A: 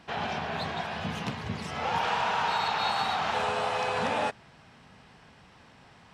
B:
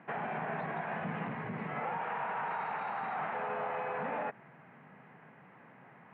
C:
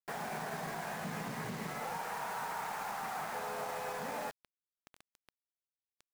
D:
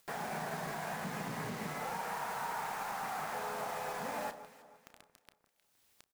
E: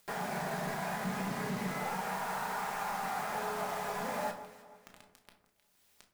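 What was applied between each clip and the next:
peak limiter -27 dBFS, peak gain reduction 10.5 dB; elliptic band-pass 140–2100 Hz, stop band 40 dB
peak limiter -32.5 dBFS, peak gain reduction 8 dB; crossover distortion -58.5 dBFS; bit crusher 8-bit; trim +1.5 dB
upward compressor, threshold -49 dBFS; doubling 33 ms -13 dB; echo whose repeats swap between lows and highs 155 ms, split 1.5 kHz, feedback 59%, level -11 dB
simulated room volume 420 m³, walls furnished, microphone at 1.3 m; trim +1 dB

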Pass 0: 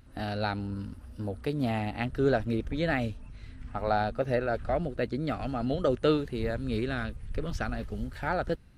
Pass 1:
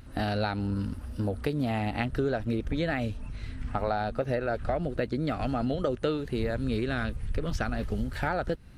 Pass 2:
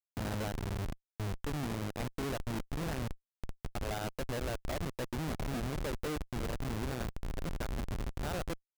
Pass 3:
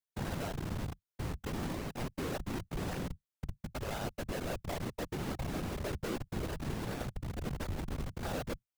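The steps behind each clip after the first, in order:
compression 6:1, threshold -33 dBFS, peak gain reduction 13 dB; trim +7.5 dB
Schmitt trigger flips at -27.5 dBFS; trim -5 dB
whisper effect; trim -1 dB

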